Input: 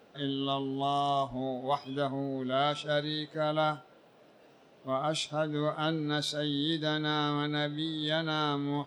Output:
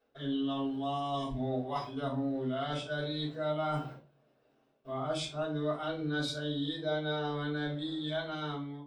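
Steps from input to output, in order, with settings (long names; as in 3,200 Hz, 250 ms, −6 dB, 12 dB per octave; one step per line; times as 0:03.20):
fade-out on the ending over 1.71 s
gain on a spectral selection 0:01.14–0:01.39, 490–1,600 Hz −11 dB
noise gate with hold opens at −47 dBFS
gain on a spectral selection 0:06.77–0:07.33, 430–900 Hz +9 dB
reversed playback
downward compressor 5 to 1, threshold −42 dBFS, peak gain reduction 18.5 dB
reversed playback
rectangular room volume 150 cubic metres, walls furnished, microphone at 5.2 metres
level −3 dB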